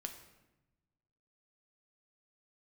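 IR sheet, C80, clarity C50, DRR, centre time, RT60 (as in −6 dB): 11.0 dB, 8.5 dB, 4.5 dB, 17 ms, 1.0 s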